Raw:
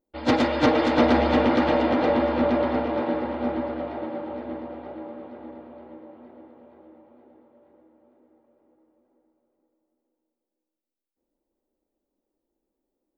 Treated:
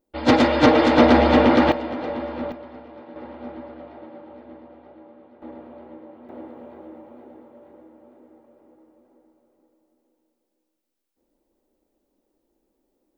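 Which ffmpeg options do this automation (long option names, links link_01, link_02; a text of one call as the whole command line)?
ffmpeg -i in.wav -af "asetnsamples=nb_out_samples=441:pad=0,asendcmd='1.72 volume volume -7dB;2.52 volume volume -16.5dB;3.16 volume volume -9.5dB;5.42 volume volume 1.5dB;6.29 volume volume 9dB',volume=5dB" out.wav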